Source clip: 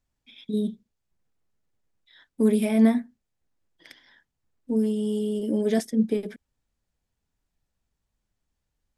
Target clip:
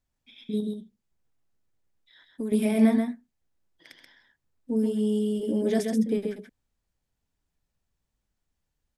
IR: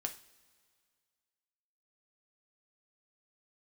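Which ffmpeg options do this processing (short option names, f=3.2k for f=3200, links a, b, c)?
-filter_complex "[0:a]asettb=1/sr,asplit=3[a][b][c];[a]atrim=end=0.604[d];[b]atrim=start=0.6:end=2.52,asetpts=PTS-STARTPTS,afade=t=in:d=0.004:c=qsin,afade=t=out:st=1.916:d=0.004:c=qsin,acompressor=threshold=-32dB:ratio=2.5[e];[c]atrim=start=2.516[f];[d][e]acrossfade=d=0.004:c1=hsin:c2=qsin[g];[g][f]acrossfade=d=0.004:c1=qsin:c2=hsin,aecho=1:1:132:0.562,volume=-2dB"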